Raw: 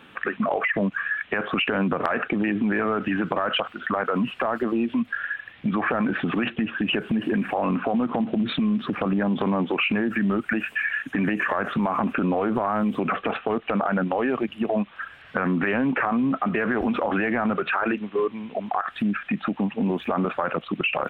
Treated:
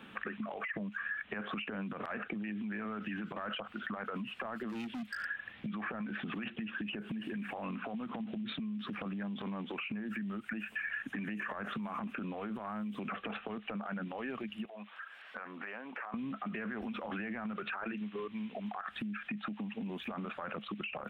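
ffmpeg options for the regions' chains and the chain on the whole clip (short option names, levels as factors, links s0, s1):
-filter_complex "[0:a]asettb=1/sr,asplit=3[s0][s1][s2];[s0]atrim=end=4.694[s3];[s1]atrim=start=4.69:end=5.25,asetpts=PTS-STARTPTS,afade=t=in:d=0.004:c=qsin,afade=t=out:st=0.556:d=0.004:c=qsin,highshelf=f=3600:g=4,asoftclip=type=hard:threshold=0.0501[s4];[s2]atrim=start=5.246[s5];[s3][s4]acrossfade=d=0.004:c1=hsin:c2=qsin[s6];[s6][s5]acrossfade=d=0.004:c1=qsin:c2=hsin,asettb=1/sr,asplit=3[s7][s8][s9];[s7]atrim=end=14.654[s10];[s8]atrim=start=14.65:end=16.14,asetpts=PTS-STARTPTS,afade=t=in:d=0.004:c=qsin,afade=t=out:st=1.486:d=0.004:c=qsin,highpass=620,acompressor=threshold=0.00631:ratio=2:attack=3.2:release=140:knee=1:detection=peak[s11];[s9]atrim=start=16.136[s12];[s10][s11]acrossfade=d=0.004:c1=hsin:c2=qsin[s13];[s13][s12]acrossfade=d=0.004:c1=qsin:c2=hsin,equalizer=f=210:w=6.1:g=11,alimiter=limit=0.126:level=0:latency=1:release=97,acrossover=split=130|1600[s14][s15][s16];[s14]acompressor=threshold=0.00251:ratio=4[s17];[s15]acompressor=threshold=0.0158:ratio=4[s18];[s16]acompressor=threshold=0.0126:ratio=4[s19];[s17][s18][s19]amix=inputs=3:normalize=0,volume=0.596"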